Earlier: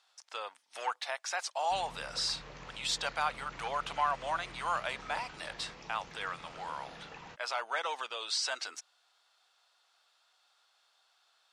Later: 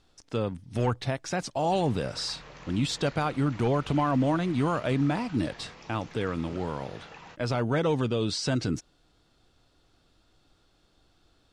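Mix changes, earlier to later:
speech: remove high-pass 780 Hz 24 dB/octave; background: send +9.0 dB

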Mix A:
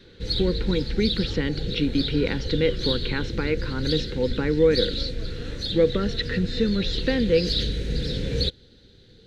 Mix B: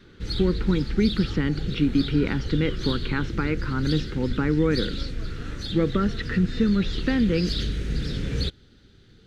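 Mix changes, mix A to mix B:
speech: add tilt EQ -1.5 dB/octave; master: add graphic EQ with 31 bands 500 Hz -11 dB, 1.25 kHz +9 dB, 4 kHz -9 dB

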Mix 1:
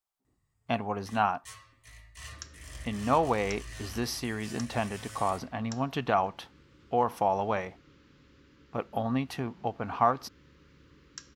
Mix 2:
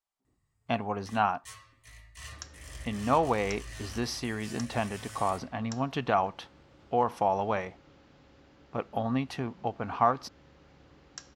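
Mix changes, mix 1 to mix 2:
speech: add low-pass 8.6 kHz 12 dB/octave; second sound: remove Butterworth band-stop 720 Hz, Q 1.2

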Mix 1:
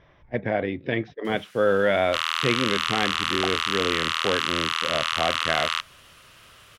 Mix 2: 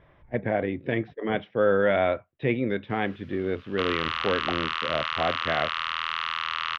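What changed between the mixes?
first sound: entry +1.65 s; second sound: entry +1.05 s; master: add distance through air 280 m

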